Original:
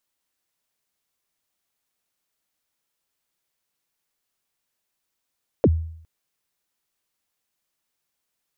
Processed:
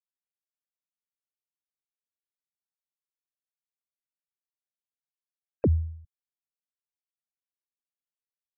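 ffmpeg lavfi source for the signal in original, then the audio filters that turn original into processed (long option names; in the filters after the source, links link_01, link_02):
-f lavfi -i "aevalsrc='0.316*pow(10,-3*t/0.65)*sin(2*PI*(600*0.047/log(81/600)*(exp(log(81/600)*min(t,0.047)/0.047)-1)+81*max(t-0.047,0)))':duration=0.41:sample_rate=44100"
-af "afftfilt=real='re*gte(hypot(re,im),0.00631)':imag='im*gte(hypot(re,im),0.00631)':win_size=1024:overlap=0.75,alimiter=limit=-17dB:level=0:latency=1:release=28"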